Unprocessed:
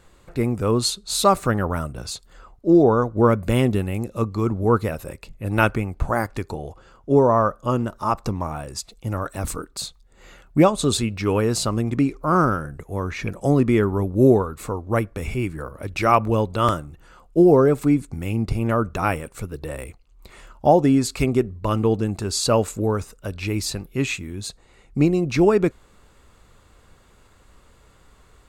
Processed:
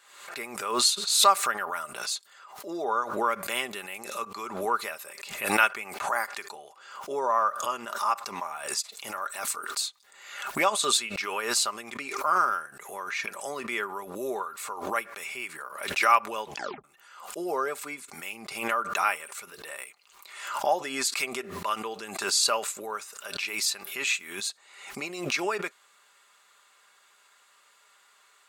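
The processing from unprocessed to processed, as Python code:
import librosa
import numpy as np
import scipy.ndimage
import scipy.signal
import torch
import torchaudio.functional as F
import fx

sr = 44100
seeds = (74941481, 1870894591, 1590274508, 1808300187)

y = fx.edit(x, sr, fx.tape_stop(start_s=16.44, length_s=0.4), tone=tone)
y = scipy.signal.sosfilt(scipy.signal.butter(2, 1200.0, 'highpass', fs=sr, output='sos'), y)
y = y + 0.4 * np.pad(y, (int(5.0 * sr / 1000.0), 0))[:len(y)]
y = fx.pre_swell(y, sr, db_per_s=66.0)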